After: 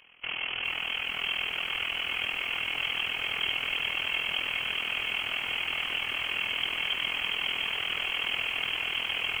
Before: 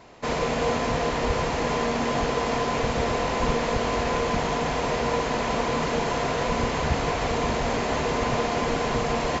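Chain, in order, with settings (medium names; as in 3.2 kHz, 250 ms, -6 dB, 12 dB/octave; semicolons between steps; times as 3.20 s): AM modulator 41 Hz, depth 70%; frequency inversion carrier 3.2 kHz; bit-crushed delay 413 ms, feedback 80%, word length 8-bit, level -6 dB; trim -4.5 dB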